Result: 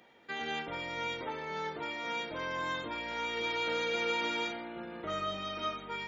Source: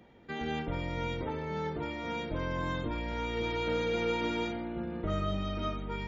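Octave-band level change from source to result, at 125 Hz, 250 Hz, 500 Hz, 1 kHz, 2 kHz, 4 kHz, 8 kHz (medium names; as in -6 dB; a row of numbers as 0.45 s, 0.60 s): -14.5 dB, -8.0 dB, -3.5 dB, +1.0 dB, +3.5 dB, +4.0 dB, no reading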